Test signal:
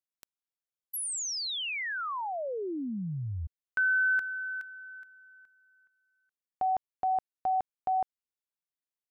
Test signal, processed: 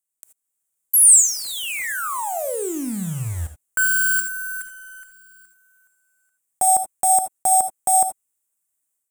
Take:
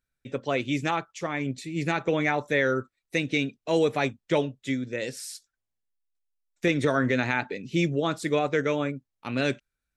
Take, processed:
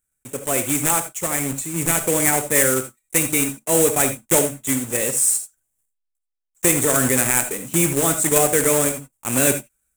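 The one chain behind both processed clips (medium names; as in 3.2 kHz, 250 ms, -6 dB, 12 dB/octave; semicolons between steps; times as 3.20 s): block-companded coder 3-bit; resonant high shelf 6.2 kHz +10.5 dB, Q 3; level rider gain up to 7.5 dB; gated-style reverb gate 100 ms rising, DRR 8.5 dB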